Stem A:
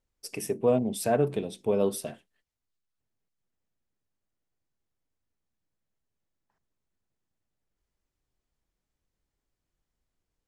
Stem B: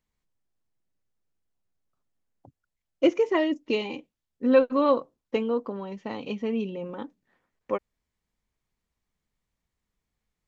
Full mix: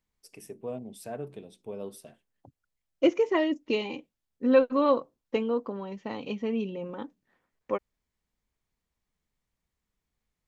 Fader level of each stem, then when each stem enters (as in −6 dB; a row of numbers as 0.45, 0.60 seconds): −13.0, −1.5 decibels; 0.00, 0.00 seconds